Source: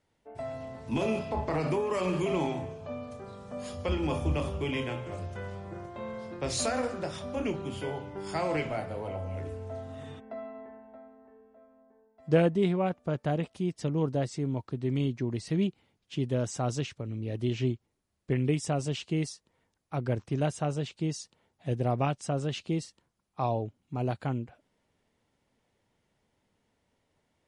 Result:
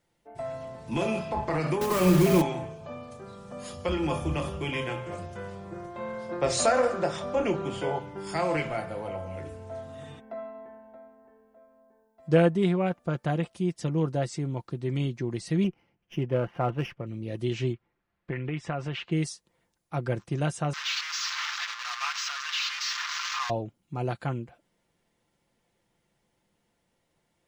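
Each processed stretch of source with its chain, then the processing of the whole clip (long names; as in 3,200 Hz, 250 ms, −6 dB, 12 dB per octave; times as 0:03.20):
0:01.81–0:02.42: one scale factor per block 3 bits + low-shelf EQ 400 Hz +11 dB
0:06.29–0:07.99: linear-phase brick-wall low-pass 9,300 Hz + parametric band 630 Hz +7 dB 2.1 octaves
0:15.64–0:17.07: dynamic equaliser 750 Hz, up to +4 dB, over −45 dBFS, Q 0.81 + Butterworth low-pass 3,100 Hz 72 dB per octave + windowed peak hold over 3 samples
0:17.73–0:19.12: low-pass filter 2,500 Hz + parametric band 1,700 Hz +8.5 dB 2.1 octaves + downward compressor 3 to 1, threshold −30 dBFS
0:20.73–0:23.50: linear delta modulator 32 kbit/s, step −28.5 dBFS + leveller curve on the samples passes 1 + elliptic high-pass filter 1,100 Hz, stop band 80 dB
whole clip: high-shelf EQ 8,600 Hz +7 dB; comb filter 5.8 ms, depth 41%; dynamic equaliser 1,500 Hz, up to +4 dB, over −46 dBFS, Q 1.1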